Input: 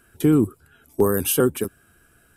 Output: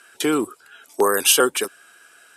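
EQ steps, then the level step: BPF 630–6000 Hz; high shelf 3100 Hz +10 dB; +8.0 dB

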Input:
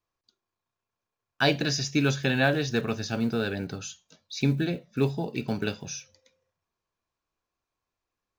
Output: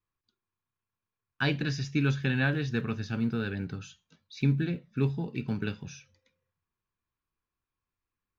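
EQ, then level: tone controls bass +9 dB, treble -14 dB; low shelf 450 Hz -6 dB; bell 650 Hz -10.5 dB 0.68 oct; -2.0 dB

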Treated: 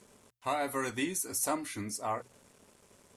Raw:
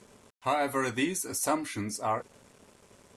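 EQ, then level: high shelf 9100 Hz +8.5 dB; notches 60/120 Hz; -4.5 dB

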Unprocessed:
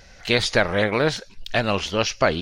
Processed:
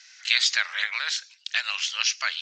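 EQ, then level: ladder high-pass 1200 Hz, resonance 20%; steep low-pass 7900 Hz 96 dB/oct; tilt +3.5 dB/oct; 0.0 dB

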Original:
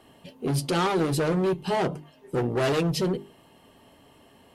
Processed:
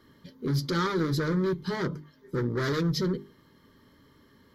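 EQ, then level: fixed phaser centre 2700 Hz, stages 6; 0.0 dB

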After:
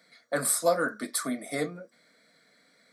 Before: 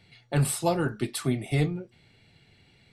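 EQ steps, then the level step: HPF 390 Hz 12 dB/oct; fixed phaser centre 560 Hz, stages 8; +6.0 dB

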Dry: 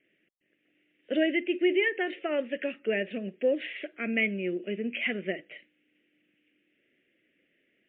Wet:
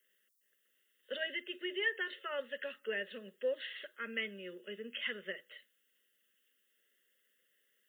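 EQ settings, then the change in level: differentiator; low shelf 130 Hz -5.5 dB; fixed phaser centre 470 Hz, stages 8; +15.0 dB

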